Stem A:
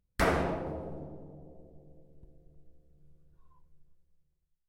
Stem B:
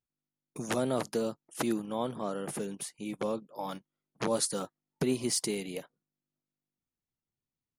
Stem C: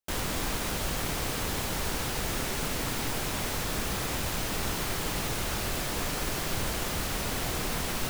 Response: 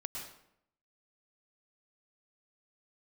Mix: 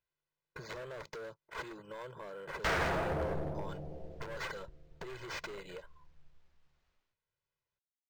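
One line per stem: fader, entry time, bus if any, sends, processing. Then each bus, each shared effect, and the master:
0:04.33 −3 dB → 0:04.66 −9.5 dB, 2.45 s, no bus, no send, high-shelf EQ 3,900 Hz +12 dB; automatic gain control gain up to 10.5 dB; hard clipping −26.5 dBFS, distortion −8 dB
−3.5 dB, 0.00 s, bus A, no send, comb filter 2 ms, depth 70%
muted
bus A: 0.0 dB, gain into a clipping stage and back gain 33.5 dB; downward compressor, threshold −43 dBFS, peak gain reduction 8 dB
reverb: not used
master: graphic EQ with 15 bands 250 Hz −9 dB, 1,600 Hz +5 dB, 10,000 Hz +8 dB; linearly interpolated sample-rate reduction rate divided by 4×

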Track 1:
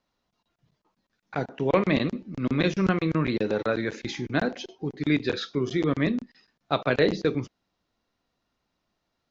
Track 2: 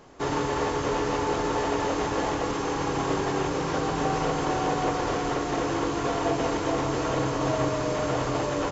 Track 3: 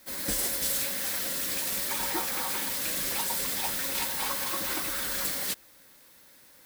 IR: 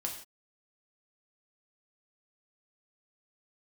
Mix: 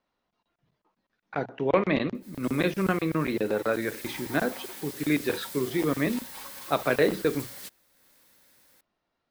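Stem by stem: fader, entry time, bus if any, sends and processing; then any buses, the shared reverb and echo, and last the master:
0.0 dB, 0.00 s, no send, bass and treble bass −5 dB, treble −10 dB; mains-hum notches 60/120 Hz
muted
0:03.58 −20 dB → 0:04.04 −11 dB, 2.15 s, no send, upward compression, threshold −42 dBFS; level that may rise only so fast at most 260 dB per second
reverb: not used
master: no processing

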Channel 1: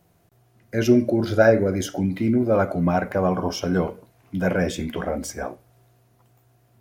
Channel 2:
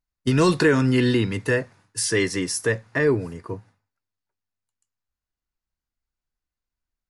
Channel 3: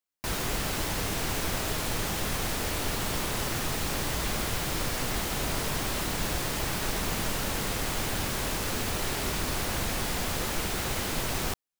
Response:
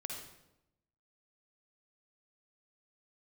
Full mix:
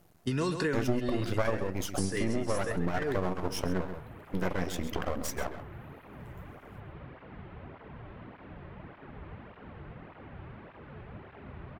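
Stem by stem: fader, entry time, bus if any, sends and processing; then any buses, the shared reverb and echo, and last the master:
+3.0 dB, 0.00 s, no send, echo send −13 dB, reverb reduction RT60 1.1 s; half-wave rectification
−7.5 dB, 0.00 s, no send, echo send −10 dB, no processing
−14.5 dB, 2.20 s, send −7 dB, no echo send, sub-octave generator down 1 octave, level +2 dB; Bessel low-pass filter 1,600 Hz, order 6; through-zero flanger with one copy inverted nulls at 1.7 Hz, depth 4.5 ms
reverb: on, RT60 0.85 s, pre-delay 47 ms
echo: single-tap delay 133 ms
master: downward compressor 3 to 1, threshold −28 dBFS, peak gain reduction 14 dB

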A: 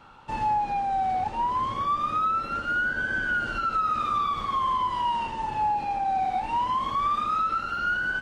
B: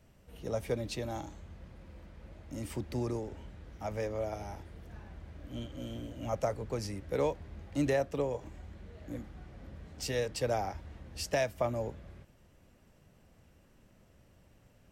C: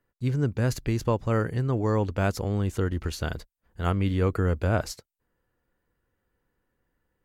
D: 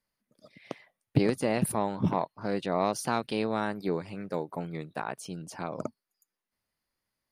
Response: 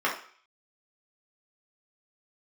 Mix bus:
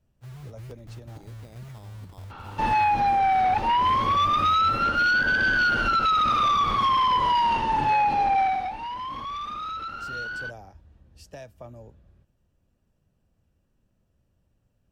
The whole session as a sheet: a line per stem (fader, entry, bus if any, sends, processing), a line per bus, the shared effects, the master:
0:08.41 −1.5 dB → 0:08.78 −13.5 dB, 2.30 s, no send, sine wavefolder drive 6 dB, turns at −17 dBFS; parametric band 7,700 Hz −11.5 dB 0.37 octaves
−13.0 dB, 0.00 s, no send, low-shelf EQ 210 Hz +8 dB; notch filter 2,100 Hz, Q 6.4
−13.0 dB, 0.00 s, no send, inverse Chebyshev low-pass filter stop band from 620 Hz, stop band 70 dB; log-companded quantiser 4 bits
−14.5 dB, 0.00 s, no send, downward compressor 4 to 1, threshold −34 dBFS, peak gain reduction 14 dB; sample-rate reduction 4,300 Hz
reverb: not used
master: no processing

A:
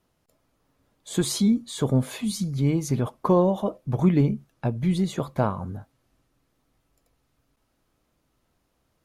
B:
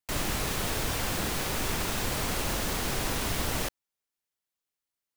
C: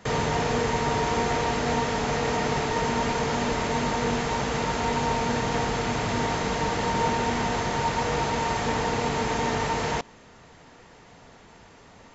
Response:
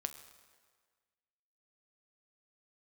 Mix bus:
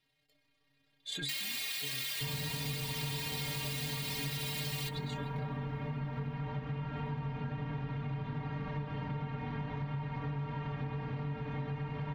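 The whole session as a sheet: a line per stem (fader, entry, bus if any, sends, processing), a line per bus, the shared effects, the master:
+1.0 dB, 0.00 s, bus A, no send, brickwall limiter −17 dBFS, peak gain reduction 8 dB; amplitude modulation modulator 31 Hz, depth 30%
+2.0 dB, 1.20 s, bus A, send −12.5 dB, spectral tilt +4 dB per octave
−0.5 dB, 2.15 s, no bus, no send, low-pass filter 3,100 Hz 24 dB per octave; low shelf with overshoot 290 Hz +9.5 dB, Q 1.5
bus A: 0.0 dB, flat-topped bell 2,900 Hz +14.5 dB; brickwall limiter −11 dBFS, peak gain reduction 9 dB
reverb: on, RT60 1.7 s, pre-delay 7 ms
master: stiff-string resonator 140 Hz, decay 0.21 s, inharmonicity 0.008; downward compressor 6 to 1, threshold −35 dBFS, peak gain reduction 13 dB

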